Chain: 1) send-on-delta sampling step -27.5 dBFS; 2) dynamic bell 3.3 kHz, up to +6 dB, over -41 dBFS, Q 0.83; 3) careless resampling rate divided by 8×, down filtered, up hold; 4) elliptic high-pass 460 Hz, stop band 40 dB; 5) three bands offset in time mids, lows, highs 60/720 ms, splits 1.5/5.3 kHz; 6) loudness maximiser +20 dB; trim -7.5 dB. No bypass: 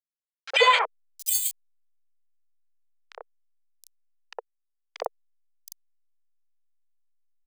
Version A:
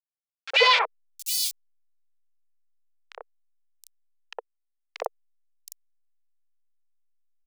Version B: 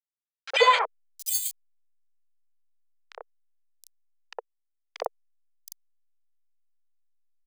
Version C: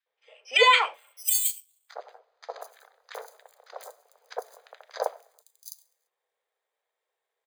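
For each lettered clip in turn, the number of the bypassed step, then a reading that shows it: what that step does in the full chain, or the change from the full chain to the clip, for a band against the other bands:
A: 3, 4 kHz band +4.5 dB; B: 2, 500 Hz band +3.0 dB; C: 1, momentary loudness spread change +5 LU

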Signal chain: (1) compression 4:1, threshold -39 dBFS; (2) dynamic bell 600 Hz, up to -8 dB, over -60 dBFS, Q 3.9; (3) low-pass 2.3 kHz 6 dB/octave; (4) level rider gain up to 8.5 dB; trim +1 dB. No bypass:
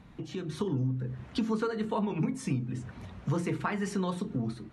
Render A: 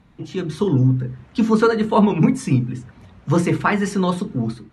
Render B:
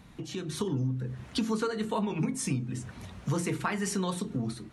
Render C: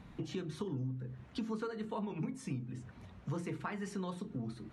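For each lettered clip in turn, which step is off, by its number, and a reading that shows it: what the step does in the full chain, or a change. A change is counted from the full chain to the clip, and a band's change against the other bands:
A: 1, mean gain reduction 10.0 dB; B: 3, 8 kHz band +9.5 dB; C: 4, momentary loudness spread change -2 LU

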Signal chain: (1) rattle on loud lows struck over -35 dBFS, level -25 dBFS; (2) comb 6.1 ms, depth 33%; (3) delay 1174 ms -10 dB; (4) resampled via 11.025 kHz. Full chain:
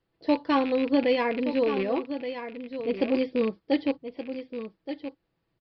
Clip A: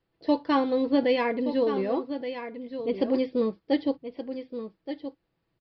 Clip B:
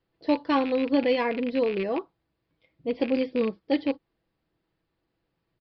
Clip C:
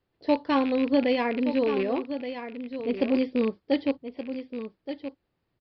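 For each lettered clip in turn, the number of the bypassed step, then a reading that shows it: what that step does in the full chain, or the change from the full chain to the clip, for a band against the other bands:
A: 1, 2 kHz band -2.0 dB; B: 3, momentary loudness spread change -5 LU; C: 2, 250 Hz band +1.5 dB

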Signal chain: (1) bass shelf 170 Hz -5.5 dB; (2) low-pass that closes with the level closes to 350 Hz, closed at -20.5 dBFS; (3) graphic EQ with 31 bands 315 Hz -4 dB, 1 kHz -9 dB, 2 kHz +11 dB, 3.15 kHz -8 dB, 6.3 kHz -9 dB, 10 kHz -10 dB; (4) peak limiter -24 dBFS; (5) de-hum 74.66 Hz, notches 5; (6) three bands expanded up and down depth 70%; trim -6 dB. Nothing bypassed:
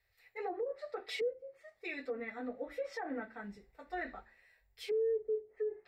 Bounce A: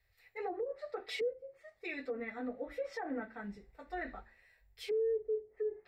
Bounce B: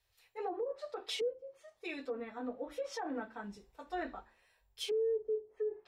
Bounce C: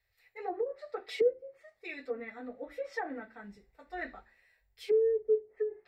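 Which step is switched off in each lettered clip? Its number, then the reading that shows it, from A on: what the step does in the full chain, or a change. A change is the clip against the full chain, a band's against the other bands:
1, 250 Hz band +2.0 dB; 3, 2 kHz band -5.0 dB; 4, crest factor change +5.0 dB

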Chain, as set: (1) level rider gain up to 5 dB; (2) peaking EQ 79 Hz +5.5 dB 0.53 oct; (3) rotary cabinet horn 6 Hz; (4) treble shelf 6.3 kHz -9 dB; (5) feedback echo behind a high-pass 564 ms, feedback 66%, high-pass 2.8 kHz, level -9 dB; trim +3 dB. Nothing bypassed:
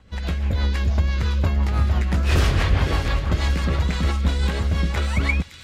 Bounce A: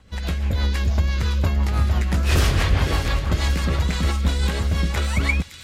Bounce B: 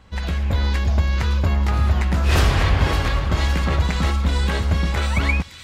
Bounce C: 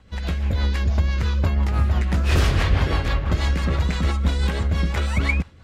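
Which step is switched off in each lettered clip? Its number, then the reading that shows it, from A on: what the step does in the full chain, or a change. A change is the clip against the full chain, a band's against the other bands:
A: 4, 8 kHz band +5.0 dB; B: 3, 1 kHz band +2.0 dB; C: 5, echo-to-direct -14.5 dB to none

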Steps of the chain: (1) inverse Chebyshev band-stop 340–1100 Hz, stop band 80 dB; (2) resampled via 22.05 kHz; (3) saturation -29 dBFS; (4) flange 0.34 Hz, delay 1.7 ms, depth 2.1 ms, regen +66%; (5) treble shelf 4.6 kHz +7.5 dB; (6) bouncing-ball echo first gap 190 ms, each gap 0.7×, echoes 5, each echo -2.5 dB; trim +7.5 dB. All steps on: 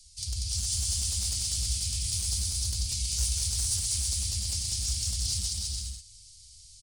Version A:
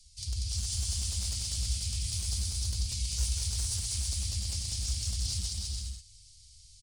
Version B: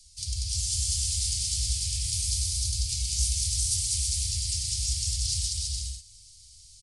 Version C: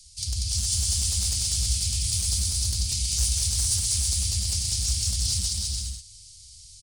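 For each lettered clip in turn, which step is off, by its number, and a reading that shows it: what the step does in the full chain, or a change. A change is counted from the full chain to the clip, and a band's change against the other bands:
5, 8 kHz band -5.0 dB; 3, distortion -18 dB; 4, loudness change +4.5 LU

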